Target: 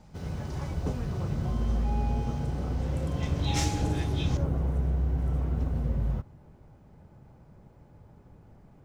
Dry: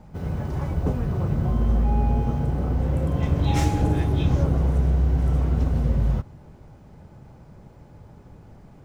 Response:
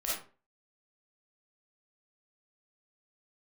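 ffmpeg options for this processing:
-af "asetnsamples=n=441:p=0,asendcmd='4.37 equalizer g -3.5',equalizer=f=5400:w=0.56:g=11,volume=0.447"

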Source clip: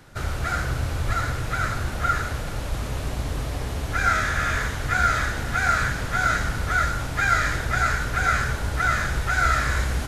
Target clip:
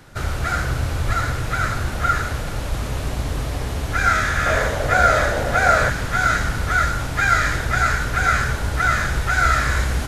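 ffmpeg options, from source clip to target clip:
-filter_complex "[0:a]asettb=1/sr,asplit=3[s0][s1][s2];[s0]atrim=end=4.464[s3];[s1]atrim=start=4.46:end=5.9,asetpts=PTS-STARTPTS,afade=t=in:d=0.004:c=qsin,afade=t=out:st=1.436:d=0.004:c=qsin,equalizer=f=580:w=1.8:g=15[s4];[s2]atrim=start=5.896[s5];[s3][s4]acrossfade=d=0.004:c1=hsin:c2=qsin[s6];[s6][s5]acrossfade=d=0.004:c1=qsin:c2=hsin,volume=1.5"

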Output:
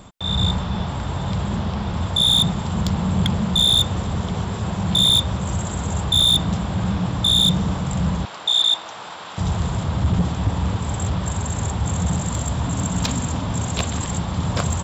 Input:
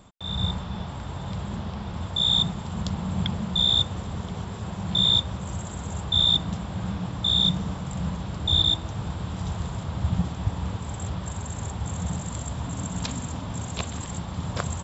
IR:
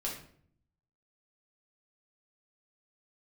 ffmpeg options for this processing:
-filter_complex "[0:a]asoftclip=type=tanh:threshold=0.0944,asettb=1/sr,asplit=3[s0][s1][s2];[s0]atrim=end=8.254[s3];[s1]atrim=start=8.25:end=9.38,asetpts=PTS-STARTPTS,afade=t=in:d=0.004:c=qsin,afade=t=out:st=1.126:d=0.004:c=qsin,highpass=730,lowpass=6700[s4];[s2]atrim=start=9.376[s5];[s3][s4]acrossfade=d=0.004:c1=hsin:c2=qsin[s6];[s6][s5]acrossfade=d=0.004:c1=qsin:c2=hsin,volume=2.82"

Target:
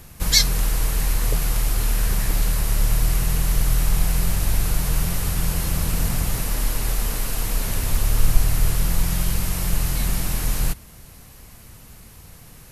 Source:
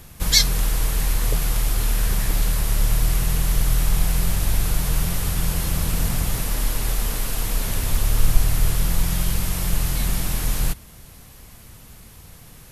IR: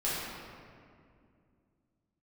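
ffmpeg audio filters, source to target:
-af "equalizer=f=3400:t=o:w=0.21:g=-3.5"

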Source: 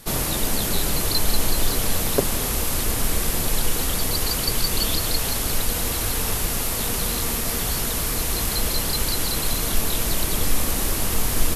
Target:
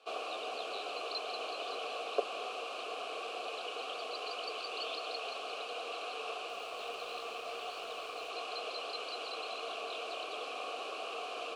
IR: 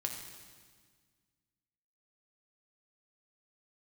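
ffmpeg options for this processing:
-filter_complex "[0:a]asplit=3[s0][s1][s2];[s0]bandpass=f=730:t=q:w=8,volume=1[s3];[s1]bandpass=f=1090:t=q:w=8,volume=0.501[s4];[s2]bandpass=f=2440:t=q:w=8,volume=0.355[s5];[s3][s4][s5]amix=inputs=3:normalize=0,highpass=f=300:w=0.5412,highpass=f=300:w=1.3066,equalizer=f=450:t=q:w=4:g=9,equalizer=f=880:t=q:w=4:g=-5,equalizer=f=1300:t=q:w=4:g=5,equalizer=f=2900:t=q:w=4:g=9,equalizer=f=4200:t=q:w=4:g=7,lowpass=f=9200:w=0.5412,lowpass=f=9200:w=1.3066,asettb=1/sr,asplit=3[s6][s7][s8];[s6]atrim=end=6.494[s9];[s7]atrim=start=6.49:end=8.3,asetpts=PTS-STARTPTS,afade=t=in:d=0.004:c=qsin,afade=t=out:st=1.806:d=0.004:c=qsin,aeval=exprs='sgn(val(0))*max(abs(val(0))-0.00133,0)':c=same[s10];[s8]atrim=start=8.296[s11];[s9][s10]acrossfade=d=0.004:c1=hsin:c2=qsin[s12];[s12][s11]acrossfade=d=0.004:c1=qsin:c2=hsin,volume=0.891"

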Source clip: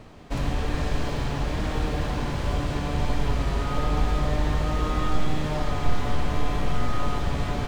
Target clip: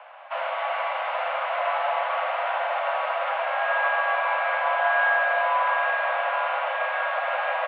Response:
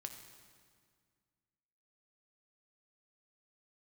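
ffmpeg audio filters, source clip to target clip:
-filter_complex "[0:a]asplit=2[s0][s1];[s1]adelay=816.3,volume=0.501,highshelf=f=4000:g=-18.4[s2];[s0][s2]amix=inputs=2:normalize=0[s3];[1:a]atrim=start_sample=2205[s4];[s3][s4]afir=irnorm=-1:irlink=0,highpass=f=210:t=q:w=0.5412,highpass=f=210:t=q:w=1.307,lowpass=f=2600:t=q:w=0.5176,lowpass=f=2600:t=q:w=0.7071,lowpass=f=2600:t=q:w=1.932,afreqshift=390,volume=2.82"

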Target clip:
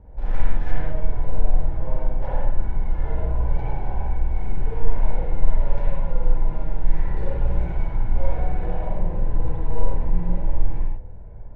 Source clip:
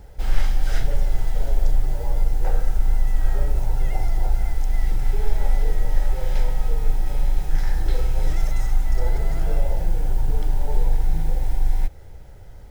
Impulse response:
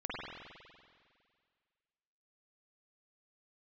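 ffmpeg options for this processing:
-filter_complex "[0:a]bandreject=f=60:t=h:w=6,bandreject=f=120:t=h:w=6,asetrate=48510,aresample=44100,adynamicsmooth=sensitivity=2:basefreq=990[s0];[1:a]atrim=start_sample=2205,afade=t=out:st=0.25:d=0.01,atrim=end_sample=11466[s1];[s0][s1]afir=irnorm=-1:irlink=0"

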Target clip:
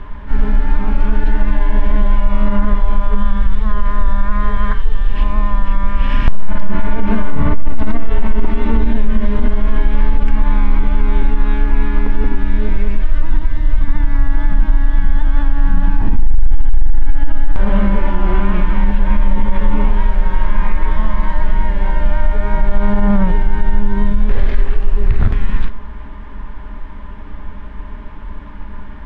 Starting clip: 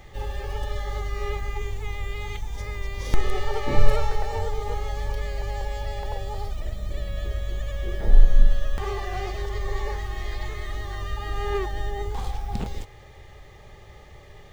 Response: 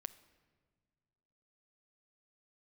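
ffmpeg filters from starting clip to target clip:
-filter_complex "[0:a]asplit=2[s0][s1];[1:a]atrim=start_sample=2205,atrim=end_sample=4410,lowshelf=f=120:g=9.5[s2];[s1][s2]afir=irnorm=-1:irlink=0,volume=3.16[s3];[s0][s3]amix=inputs=2:normalize=0,asetrate=22050,aresample=44100,lowpass=2400,equalizer=f=420:t=o:w=1.1:g=-9,alimiter=level_in=2.24:limit=0.891:release=50:level=0:latency=1,volume=0.891"

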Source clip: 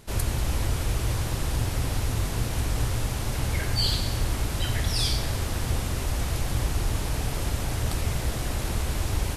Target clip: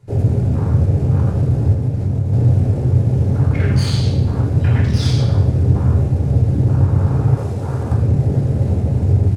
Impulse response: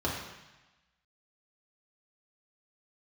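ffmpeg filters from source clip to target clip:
-filter_complex "[0:a]bandreject=f=50:t=h:w=6,bandreject=f=100:t=h:w=6,bandreject=f=150:t=h:w=6,bandreject=f=200:t=h:w=6,bandreject=f=250:t=h:w=6,bandreject=f=300:t=h:w=6,bandreject=f=350:t=h:w=6,aecho=1:1:129:0.188,afwtdn=0.0251,aeval=exprs='clip(val(0),-1,0.0422)':c=same,equalizer=f=96:t=o:w=2:g=5.5,aeval=exprs='0.316*(cos(1*acos(clip(val(0)/0.316,-1,1)))-cos(1*PI/2))+0.158*(cos(5*acos(clip(val(0)/0.316,-1,1)))-cos(5*PI/2))':c=same[s0];[1:a]atrim=start_sample=2205,asetrate=66150,aresample=44100[s1];[s0][s1]afir=irnorm=-1:irlink=0,asplit=3[s2][s3][s4];[s2]afade=t=out:st=1.73:d=0.02[s5];[s3]acompressor=threshold=0.447:ratio=5,afade=t=in:st=1.73:d=0.02,afade=t=out:st=2.32:d=0.02[s6];[s4]afade=t=in:st=2.32:d=0.02[s7];[s5][s6][s7]amix=inputs=3:normalize=0,asettb=1/sr,asplit=3[s8][s9][s10];[s8]atrim=end=7.374[s11];[s9]atrim=start=7.37:end=7.92,asetpts=PTS-STARTPTS,afade=t=in:d=0.004:c=qsin,afade=t=out:st=0.546:d=0.004:c=qsin,bass=f=250:g=-8,treble=f=4000:g=4[s12];[s10]atrim=start=7.916[s13];[s11][s12]acrossfade=d=0.004:c1=hsin:c2=qsin[s14];[s14][s13]acrossfade=d=0.004:c1=qsin:c2=hsin,volume=0.422"

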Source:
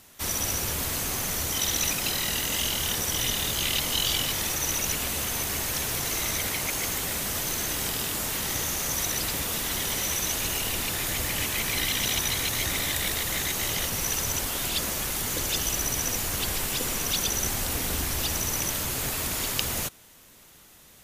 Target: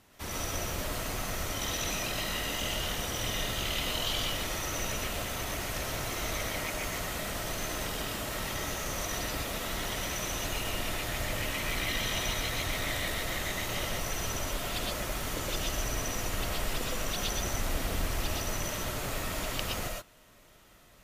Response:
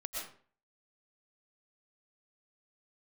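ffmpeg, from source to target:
-filter_complex "[0:a]highshelf=f=4100:g=-12[s0];[1:a]atrim=start_sample=2205,atrim=end_sample=6174[s1];[s0][s1]afir=irnorm=-1:irlink=0"

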